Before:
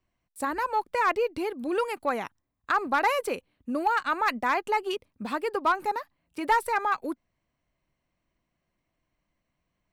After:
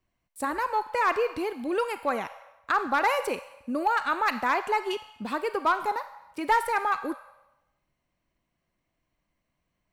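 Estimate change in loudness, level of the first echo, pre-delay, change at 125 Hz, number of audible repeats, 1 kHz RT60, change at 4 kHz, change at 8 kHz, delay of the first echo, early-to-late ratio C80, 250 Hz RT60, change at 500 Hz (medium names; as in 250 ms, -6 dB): +0.5 dB, no echo, 29 ms, no reading, no echo, 0.95 s, +0.5 dB, +0.5 dB, no echo, 14.0 dB, 1.0 s, 0.0 dB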